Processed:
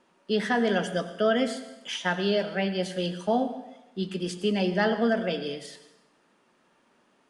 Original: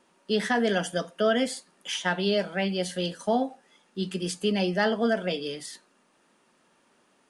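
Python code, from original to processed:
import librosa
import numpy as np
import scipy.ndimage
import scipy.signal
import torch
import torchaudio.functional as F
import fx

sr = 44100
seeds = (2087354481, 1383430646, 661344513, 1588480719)

y = fx.high_shelf(x, sr, hz=7300.0, db=-12.0)
y = fx.rev_plate(y, sr, seeds[0], rt60_s=0.98, hf_ratio=0.9, predelay_ms=75, drr_db=11.5)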